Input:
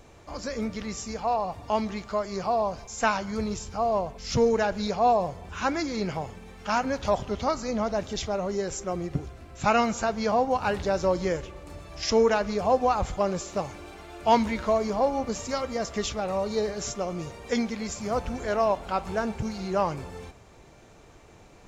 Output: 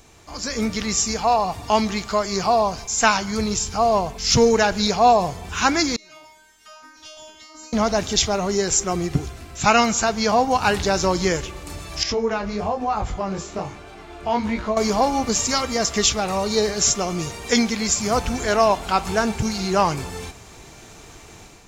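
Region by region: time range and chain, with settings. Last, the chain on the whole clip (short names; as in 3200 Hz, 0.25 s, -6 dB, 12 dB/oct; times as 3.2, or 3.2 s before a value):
5.96–7.73 low shelf 180 Hz -8.5 dB + negative-ratio compressor -35 dBFS + resonator 310 Hz, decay 0.68 s, mix 100%
12.03–14.77 LPF 1500 Hz 6 dB/oct + compressor 2.5:1, threshold -25 dBFS + chorus 1.1 Hz, delay 18.5 ms, depth 7 ms
whole clip: high shelf 3100 Hz +11 dB; AGC gain up to 8 dB; bell 550 Hz -8.5 dB 0.22 oct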